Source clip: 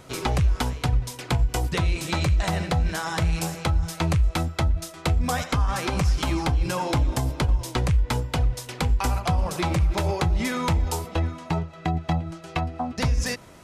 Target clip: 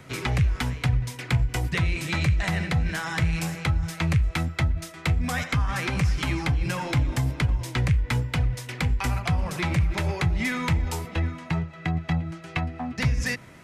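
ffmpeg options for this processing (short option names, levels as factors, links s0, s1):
-filter_complex "[0:a]equalizer=f=125:t=o:w=1:g=8,equalizer=f=250:t=o:w=1:g=4,equalizer=f=2000:t=o:w=1:g=10,acrossover=split=160|1400|5900[s0][s1][s2][s3];[s1]asoftclip=type=tanh:threshold=0.0708[s4];[s0][s4][s2][s3]amix=inputs=4:normalize=0,volume=0.596"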